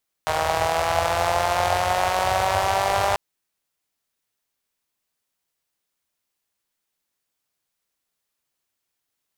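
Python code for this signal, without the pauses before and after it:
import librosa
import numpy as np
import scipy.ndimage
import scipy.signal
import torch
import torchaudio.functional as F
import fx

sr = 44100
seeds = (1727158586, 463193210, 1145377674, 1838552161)

y = fx.engine_four_rev(sr, seeds[0], length_s=2.89, rpm=4700, resonances_hz=(83.0, 710.0), end_rpm=6000)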